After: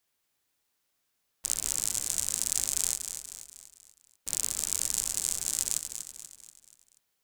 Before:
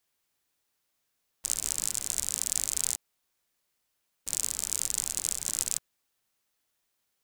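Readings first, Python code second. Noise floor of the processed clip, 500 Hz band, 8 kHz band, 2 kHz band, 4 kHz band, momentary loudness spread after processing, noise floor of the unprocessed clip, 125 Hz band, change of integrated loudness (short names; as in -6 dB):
-78 dBFS, +1.0 dB, +0.5 dB, +0.5 dB, +0.5 dB, 15 LU, -79 dBFS, +1.0 dB, +0.5 dB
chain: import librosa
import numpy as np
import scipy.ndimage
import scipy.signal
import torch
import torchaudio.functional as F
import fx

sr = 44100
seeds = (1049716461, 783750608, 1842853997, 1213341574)

y = fx.echo_feedback(x, sr, ms=241, feedback_pct=48, wet_db=-8.5)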